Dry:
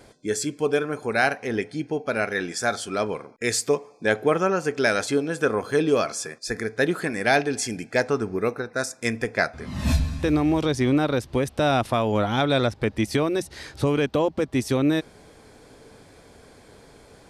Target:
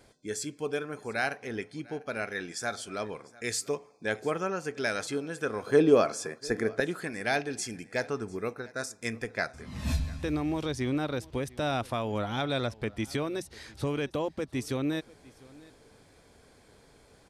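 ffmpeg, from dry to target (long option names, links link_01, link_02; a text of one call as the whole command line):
ffmpeg -i in.wav -af "asetnsamples=nb_out_samples=441:pad=0,asendcmd='5.67 equalizer g 7.5;6.8 equalizer g -2.5',equalizer=frequency=420:width=0.31:gain=-3,aecho=1:1:698:0.075,volume=-7dB" out.wav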